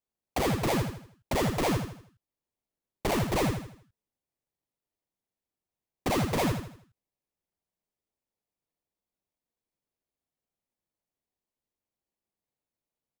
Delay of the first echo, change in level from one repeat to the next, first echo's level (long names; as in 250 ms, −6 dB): 80 ms, −8.0 dB, −6.5 dB